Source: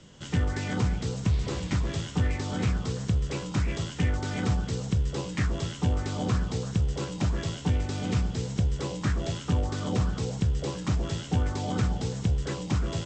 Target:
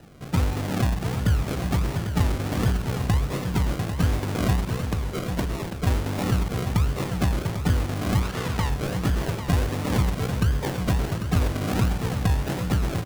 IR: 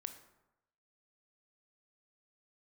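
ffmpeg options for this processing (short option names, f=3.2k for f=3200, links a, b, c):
-filter_complex "[0:a]asettb=1/sr,asplit=3[a][b][c];[a]atrim=end=4.774[d];[b]atrim=start=4.77:end=5.87,asetpts=PTS-STARTPTS,afade=t=in:d=0.004:c=qsin,afade=t=out:st=1.096:d=0.004:c=qsin,equalizer=f=96:w=0.75:g=-8[e];[c]atrim=start=5.866[f];[d][e]acrossfade=d=0.004:c1=hsin:c2=qsin[g];[g][f]acrossfade=d=0.004:c1=qsin:c2=hsin,acrusher=samples=39:mix=1:aa=0.000001:lfo=1:lforange=23.4:lforate=1.4,asettb=1/sr,asplit=3[h][i][j];[h]atrim=end=8.224[k];[i]atrim=start=8.22:end=8.7,asetpts=PTS-STARTPTS,afade=t=in:d=0.004:c=qsin,afade=t=out:st=0.476:d=0.004:c=qsin,asplit=2[l][m];[m]highpass=f=720:p=1,volume=11dB,asoftclip=type=tanh:threshold=-17dB[n];[l][n]amix=inputs=2:normalize=0,lowpass=f=7.4k:p=1,volume=-6dB[o];[j]atrim=start=8.696[p];[k][o]acrossfade=d=0.004:c1=hsin:c2=qsin[q];[q][p]acrossfade=d=0.004:c1=qsin:c2=hsin,aecho=1:1:796:0.376,volume=3.5dB"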